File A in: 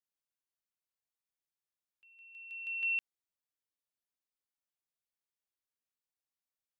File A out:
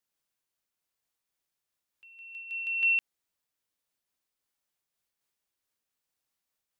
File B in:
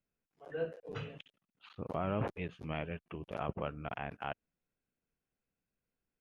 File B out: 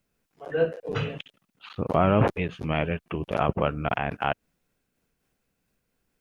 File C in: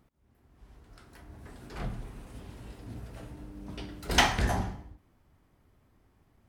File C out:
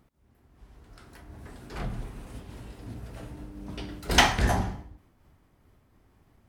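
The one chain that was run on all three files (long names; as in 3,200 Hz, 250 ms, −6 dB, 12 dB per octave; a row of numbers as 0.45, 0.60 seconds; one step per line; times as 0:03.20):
amplitude modulation by smooth noise, depth 50%
loudness normalisation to −27 LKFS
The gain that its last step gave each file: +11.0, +16.5, +6.0 decibels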